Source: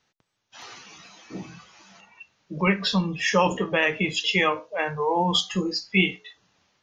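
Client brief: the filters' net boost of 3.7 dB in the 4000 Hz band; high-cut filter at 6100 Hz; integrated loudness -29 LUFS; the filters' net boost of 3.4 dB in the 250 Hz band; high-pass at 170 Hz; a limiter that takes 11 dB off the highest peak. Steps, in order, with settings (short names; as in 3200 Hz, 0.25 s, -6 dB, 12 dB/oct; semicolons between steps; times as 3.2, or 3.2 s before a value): HPF 170 Hz; LPF 6100 Hz; bell 250 Hz +8.5 dB; bell 4000 Hz +5.5 dB; gain -3.5 dB; limiter -19 dBFS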